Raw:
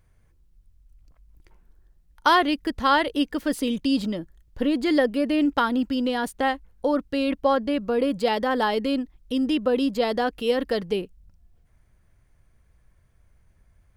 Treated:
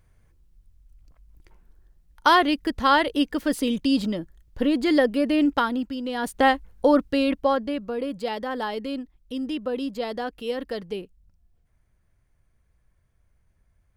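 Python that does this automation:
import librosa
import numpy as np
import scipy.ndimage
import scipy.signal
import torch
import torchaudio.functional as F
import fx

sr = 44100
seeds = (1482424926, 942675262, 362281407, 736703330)

y = fx.gain(x, sr, db=fx.line((5.51, 1.0), (6.02, -7.0), (6.41, 5.0), (6.96, 5.0), (7.96, -6.0)))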